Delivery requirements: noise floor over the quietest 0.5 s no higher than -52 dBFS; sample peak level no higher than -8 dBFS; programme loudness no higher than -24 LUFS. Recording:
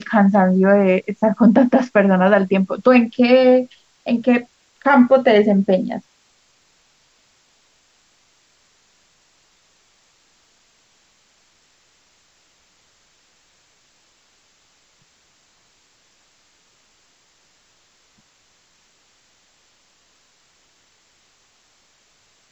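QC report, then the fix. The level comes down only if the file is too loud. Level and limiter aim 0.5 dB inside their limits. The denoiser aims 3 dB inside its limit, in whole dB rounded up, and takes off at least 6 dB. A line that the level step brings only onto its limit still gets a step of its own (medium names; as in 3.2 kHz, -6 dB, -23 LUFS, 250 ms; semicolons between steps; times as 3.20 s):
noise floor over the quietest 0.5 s -59 dBFS: pass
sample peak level -2.5 dBFS: fail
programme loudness -15.0 LUFS: fail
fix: trim -9.5 dB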